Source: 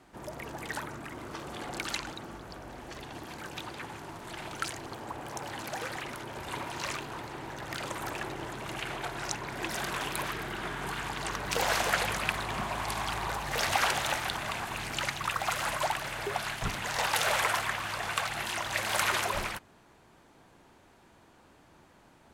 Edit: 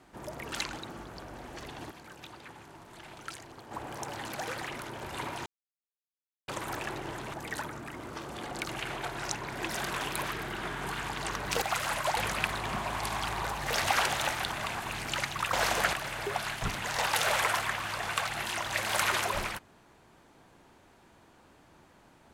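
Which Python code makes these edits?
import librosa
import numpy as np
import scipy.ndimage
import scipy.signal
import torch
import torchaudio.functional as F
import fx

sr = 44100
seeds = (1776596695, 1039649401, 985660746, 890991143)

y = fx.edit(x, sr, fx.move(start_s=0.52, length_s=1.34, to_s=8.68),
    fx.clip_gain(start_s=3.25, length_s=1.8, db=-7.5),
    fx.silence(start_s=6.8, length_s=1.02),
    fx.swap(start_s=11.62, length_s=0.4, other_s=15.38, other_length_s=0.55), tone=tone)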